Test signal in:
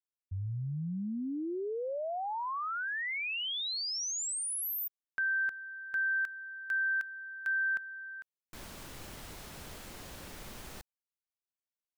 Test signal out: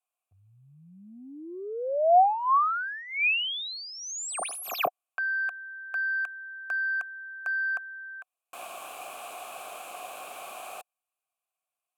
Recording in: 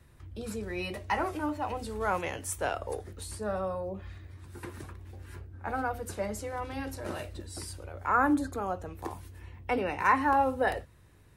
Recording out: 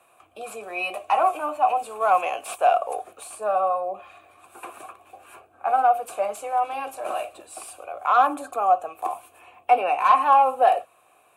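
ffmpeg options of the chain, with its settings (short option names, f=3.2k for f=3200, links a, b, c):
-filter_complex "[0:a]aexciter=amount=11.4:drive=6:freq=7.5k,asplit=2[a][b];[b]highpass=f=720:p=1,volume=20dB,asoftclip=type=tanh:threshold=-4.5dB[c];[a][c]amix=inputs=2:normalize=0,lowpass=f=7.2k:p=1,volume=-6dB,asplit=3[d][e][f];[d]bandpass=f=730:t=q:w=8,volume=0dB[g];[e]bandpass=f=1.09k:t=q:w=8,volume=-6dB[h];[f]bandpass=f=2.44k:t=q:w=8,volume=-9dB[i];[g][h][i]amix=inputs=3:normalize=0,volume=8dB"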